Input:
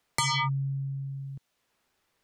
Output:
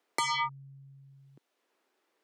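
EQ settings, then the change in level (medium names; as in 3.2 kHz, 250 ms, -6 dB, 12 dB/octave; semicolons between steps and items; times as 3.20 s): ladder high-pass 270 Hz, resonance 40%; treble shelf 3.1 kHz -6.5 dB; +7.5 dB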